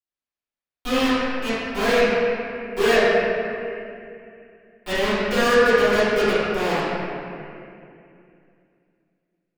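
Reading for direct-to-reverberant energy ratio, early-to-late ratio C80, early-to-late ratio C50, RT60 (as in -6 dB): -16.5 dB, -2.5 dB, -6.0 dB, 2.5 s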